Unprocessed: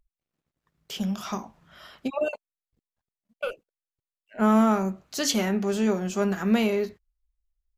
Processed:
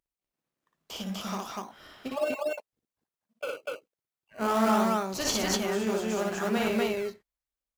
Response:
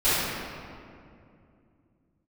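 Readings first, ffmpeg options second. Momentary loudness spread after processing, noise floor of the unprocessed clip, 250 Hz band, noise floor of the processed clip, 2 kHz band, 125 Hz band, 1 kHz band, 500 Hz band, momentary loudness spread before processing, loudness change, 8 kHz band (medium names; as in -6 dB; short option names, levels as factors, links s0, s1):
15 LU, under -85 dBFS, -6.0 dB, under -85 dBFS, 0.0 dB, no reading, 0.0 dB, -1.5 dB, 14 LU, -3.5 dB, -0.5 dB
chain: -filter_complex "[0:a]highpass=f=500:p=1,asplit=2[s0][s1];[s1]acrusher=samples=17:mix=1:aa=0.000001:lfo=1:lforange=17:lforate=1.2,volume=0.447[s2];[s0][s2]amix=inputs=2:normalize=0,aecho=1:1:58.31|244.9:0.794|1,volume=0.562"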